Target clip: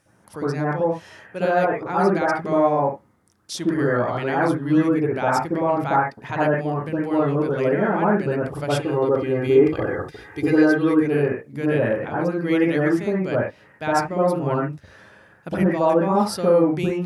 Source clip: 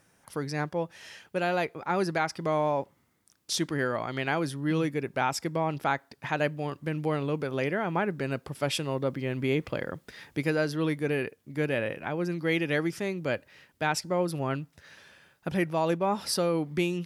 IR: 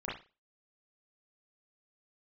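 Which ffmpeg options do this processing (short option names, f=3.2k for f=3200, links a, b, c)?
-filter_complex "[0:a]asettb=1/sr,asplit=3[a][b][c];[a]atrim=end=8.764[d];[b]atrim=start=8.76:end=10.96,asetpts=PTS-STARTPTS,afade=t=in:d=0.004:c=qsin,afade=t=out:st=2.196:d=0.004:c=qsin,aecho=1:1:2.5:0.61,atrim=end_sample=97020[e];[c]atrim=start=10.956[f];[d][e]acrossfade=d=0.004:c1=hsin:c2=qsin[g];[g][f]acrossfade=d=0.004:c1=qsin:c2=hsin[h];[1:a]atrim=start_sample=2205,atrim=end_sample=3528,asetrate=22932,aresample=44100[i];[h][i]afir=irnorm=-1:irlink=0"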